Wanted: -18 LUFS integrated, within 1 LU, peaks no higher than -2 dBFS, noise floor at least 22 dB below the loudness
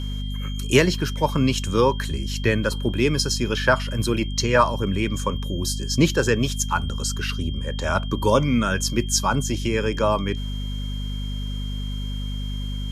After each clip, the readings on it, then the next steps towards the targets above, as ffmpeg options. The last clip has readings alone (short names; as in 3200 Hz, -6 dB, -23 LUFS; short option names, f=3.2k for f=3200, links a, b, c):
hum 50 Hz; harmonics up to 250 Hz; hum level -26 dBFS; steady tone 3200 Hz; tone level -38 dBFS; loudness -23.0 LUFS; peak -3.5 dBFS; loudness target -18.0 LUFS
-> -af "bandreject=f=50:t=h:w=6,bandreject=f=100:t=h:w=6,bandreject=f=150:t=h:w=6,bandreject=f=200:t=h:w=6,bandreject=f=250:t=h:w=6"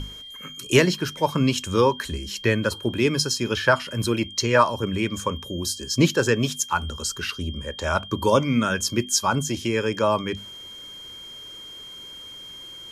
hum none; steady tone 3200 Hz; tone level -38 dBFS
-> -af "bandreject=f=3.2k:w=30"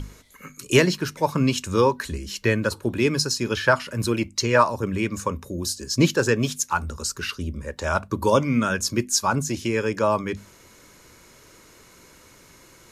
steady tone none; loudness -23.0 LUFS; peak -3.5 dBFS; loudness target -18.0 LUFS
-> -af "volume=5dB,alimiter=limit=-2dB:level=0:latency=1"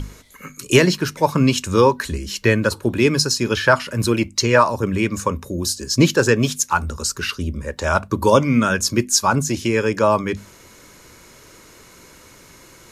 loudness -18.5 LUFS; peak -2.0 dBFS; noise floor -47 dBFS